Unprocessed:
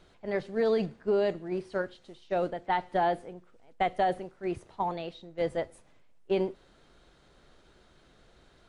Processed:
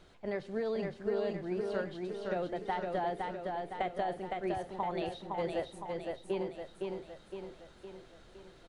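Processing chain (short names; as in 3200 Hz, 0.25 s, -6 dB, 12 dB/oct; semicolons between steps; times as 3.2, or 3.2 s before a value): compressor, threshold -32 dBFS, peak gain reduction 9.5 dB; feedback echo 0.512 s, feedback 54%, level -3.5 dB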